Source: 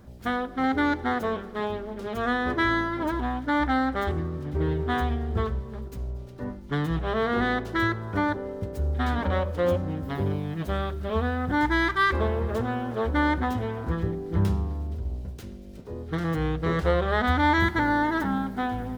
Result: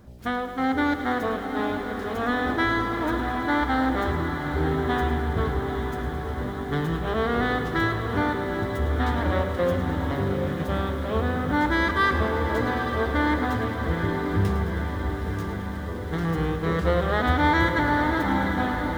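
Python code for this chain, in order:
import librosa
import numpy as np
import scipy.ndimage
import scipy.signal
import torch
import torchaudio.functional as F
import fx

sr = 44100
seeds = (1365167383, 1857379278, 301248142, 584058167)

y = fx.echo_diffused(x, sr, ms=864, feedback_pct=68, wet_db=-7.5)
y = fx.echo_crushed(y, sr, ms=107, feedback_pct=80, bits=8, wet_db=-11.5)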